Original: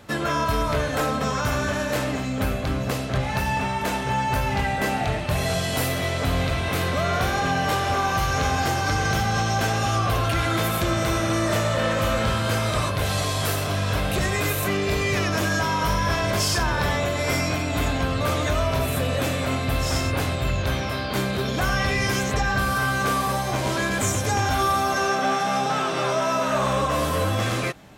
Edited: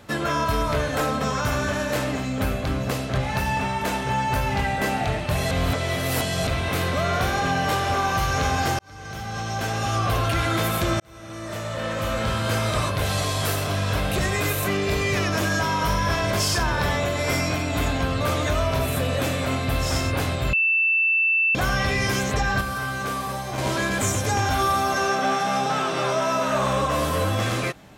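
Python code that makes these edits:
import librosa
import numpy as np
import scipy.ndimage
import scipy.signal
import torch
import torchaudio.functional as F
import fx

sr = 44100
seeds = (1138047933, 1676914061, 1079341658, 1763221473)

y = fx.edit(x, sr, fx.reverse_span(start_s=5.51, length_s=0.96),
    fx.fade_in_span(start_s=8.79, length_s=1.33),
    fx.fade_in_span(start_s=11.0, length_s=1.58),
    fx.bleep(start_s=20.53, length_s=1.02, hz=2660.0, db=-17.0),
    fx.clip_gain(start_s=22.61, length_s=0.97, db=-5.0), tone=tone)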